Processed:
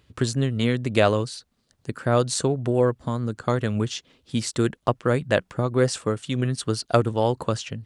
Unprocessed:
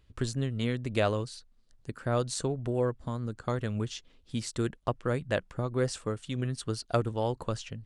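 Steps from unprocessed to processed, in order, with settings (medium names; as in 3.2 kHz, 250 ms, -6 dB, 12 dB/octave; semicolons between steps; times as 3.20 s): high-pass 95 Hz 12 dB/octave; trim +8.5 dB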